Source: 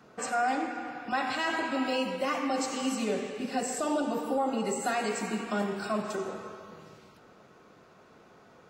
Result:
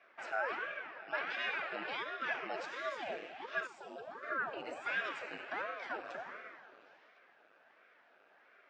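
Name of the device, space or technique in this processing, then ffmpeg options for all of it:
voice changer toy: -filter_complex "[0:a]asettb=1/sr,asplit=3[link_01][link_02][link_03];[link_01]atrim=end=3.674[link_04];[link_02]atrim=start=3.67:end=4.23,asetpts=PTS-STARTPTS,afade=type=in:duration=0.004:curve=qsin,afade=type=out:start_time=0.556:duration=0.004:curve=qsin,equalizer=frequency=1400:width=0.3:gain=-11.5[link_05];[link_03]atrim=start=4.226[link_06];[link_04][link_05]acrossfade=duration=0.004:curve1=hsin:curve2=qsin[link_07];[link_07][link_06]acrossfade=duration=0.004:curve1=qsin:curve2=hsin,aeval=exprs='val(0)*sin(2*PI*480*n/s+480*0.9/1.4*sin(2*PI*1.4*n/s))':channel_layout=same,highpass=480,equalizer=frequency=650:width_type=q:width=4:gain=3,equalizer=frequency=1000:width_type=q:width=4:gain=-5,equalizer=frequency=1600:width_type=q:width=4:gain=8,equalizer=frequency=2500:width_type=q:width=4:gain=6,equalizer=frequency=4300:width_type=q:width=4:gain=-4,lowpass=frequency=4600:width=0.5412,lowpass=frequency=4600:width=1.3066,volume=-6.5dB"

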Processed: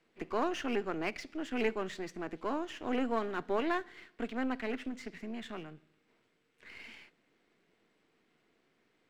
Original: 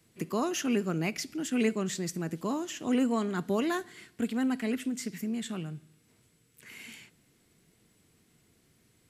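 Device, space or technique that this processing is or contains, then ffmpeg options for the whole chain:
crystal radio: -af "highpass=340,lowpass=2700,aeval=exprs='if(lt(val(0),0),0.447*val(0),val(0))':channel_layout=same,volume=2dB"

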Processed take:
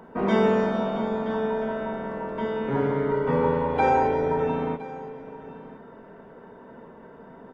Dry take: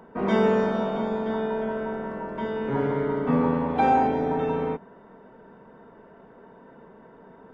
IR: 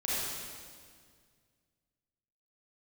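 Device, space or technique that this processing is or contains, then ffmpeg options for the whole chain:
compressed reverb return: -filter_complex "[0:a]asplit=2[link_01][link_02];[1:a]atrim=start_sample=2205[link_03];[link_02][link_03]afir=irnorm=-1:irlink=0,acompressor=threshold=-29dB:ratio=6,volume=-9.5dB[link_04];[link_01][link_04]amix=inputs=2:normalize=0,asettb=1/sr,asplit=3[link_05][link_06][link_07];[link_05]atrim=end=3.114[link_08];[link_06]atrim=start=3.11:end=4.47,asetpts=PTS-STARTPTS,afade=type=in:duration=0.004:curve=qsin,afade=type=out:start_time=1.356:duration=0.004:curve=qsin,aecho=1:1:2.1:0.59,atrim=end_sample=59976[link_09];[link_07]atrim=start=4.466[link_10];[link_08][link_09]acrossfade=duration=0.004:curve1=hsin:curve2=qsin[link_11];[link_11][link_10]acrossfade=duration=0.004:curve1=qsin:curve2=hsin,aecho=1:1:1014:0.126"

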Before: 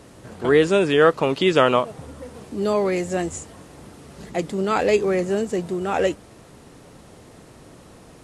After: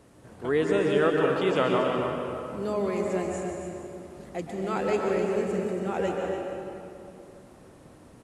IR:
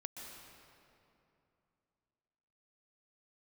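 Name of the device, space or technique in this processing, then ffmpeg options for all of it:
cave: -filter_complex "[0:a]equalizer=frequency=4500:width=0.78:gain=-4,aecho=1:1:282:0.335[link_01];[1:a]atrim=start_sample=2205[link_02];[link_01][link_02]afir=irnorm=-1:irlink=0,volume=-4dB"

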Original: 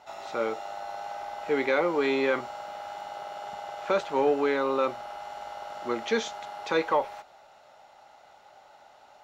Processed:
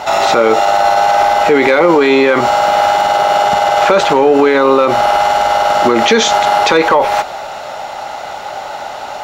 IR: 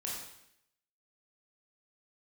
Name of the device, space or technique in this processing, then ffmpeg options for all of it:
loud club master: -af "acompressor=threshold=-29dB:ratio=2.5,asoftclip=type=hard:threshold=-21.5dB,alimiter=level_in=31dB:limit=-1dB:release=50:level=0:latency=1,volume=-1dB"

